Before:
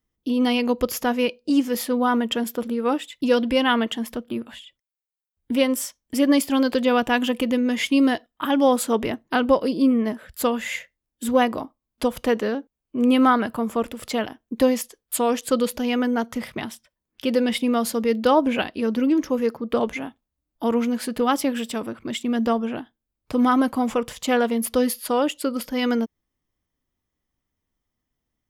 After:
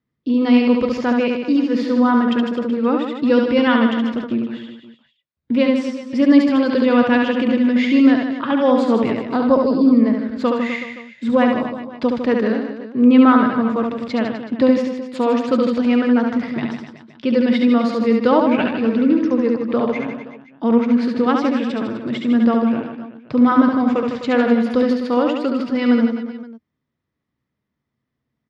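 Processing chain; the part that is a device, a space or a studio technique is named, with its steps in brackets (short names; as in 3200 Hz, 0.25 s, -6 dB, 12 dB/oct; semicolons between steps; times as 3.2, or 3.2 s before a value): guitar cabinet (speaker cabinet 91–4300 Hz, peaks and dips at 140 Hz +9 dB, 230 Hz +4 dB, 770 Hz -4 dB, 3100 Hz -7 dB); 9.22–9.93 band shelf 2200 Hz -12.5 dB 1.3 oct; reverse bouncing-ball echo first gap 70 ms, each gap 1.2×, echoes 5; gain +2 dB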